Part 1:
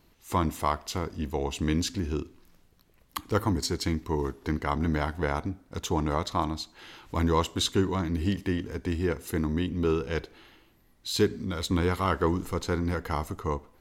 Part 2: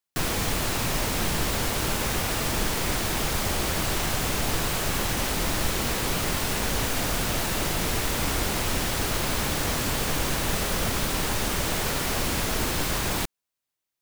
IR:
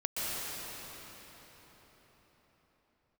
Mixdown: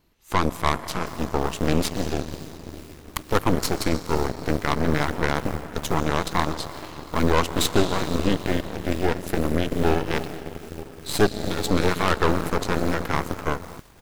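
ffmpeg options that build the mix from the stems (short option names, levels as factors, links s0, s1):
-filter_complex "[0:a]volume=1.26,asplit=2[s0][s1];[s1]volume=0.251[s2];[1:a]acrossover=split=1500[s3][s4];[s3]aeval=exprs='val(0)*(1-0.5/2+0.5/2*cos(2*PI*2.3*n/s))':c=same[s5];[s4]aeval=exprs='val(0)*(1-0.5/2-0.5/2*cos(2*PI*2.3*n/s))':c=same[s6];[s5][s6]amix=inputs=2:normalize=0,adelay=900,volume=0.15[s7];[2:a]atrim=start_sample=2205[s8];[s2][s8]afir=irnorm=-1:irlink=0[s9];[s0][s7][s9]amix=inputs=3:normalize=0,aeval=exprs='0.501*(cos(1*acos(clip(val(0)/0.501,-1,1)))-cos(1*PI/2))+0.0398*(cos(7*acos(clip(val(0)/0.501,-1,1)))-cos(7*PI/2))+0.0891*(cos(8*acos(clip(val(0)/0.501,-1,1)))-cos(8*PI/2))':c=same"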